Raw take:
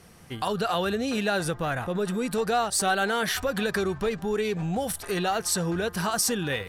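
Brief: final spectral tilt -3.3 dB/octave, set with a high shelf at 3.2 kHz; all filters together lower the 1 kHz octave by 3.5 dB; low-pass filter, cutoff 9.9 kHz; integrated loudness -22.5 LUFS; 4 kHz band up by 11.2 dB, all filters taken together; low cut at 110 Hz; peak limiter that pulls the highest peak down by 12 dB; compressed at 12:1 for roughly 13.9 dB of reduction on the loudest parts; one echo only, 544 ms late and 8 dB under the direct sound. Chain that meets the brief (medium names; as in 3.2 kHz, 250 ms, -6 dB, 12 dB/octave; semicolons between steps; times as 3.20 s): high-pass 110 Hz; low-pass 9.9 kHz; peaking EQ 1 kHz -7 dB; treble shelf 3.2 kHz +8.5 dB; peaking EQ 4 kHz +8 dB; compression 12:1, threshold -27 dBFS; peak limiter -25.5 dBFS; delay 544 ms -8 dB; trim +11 dB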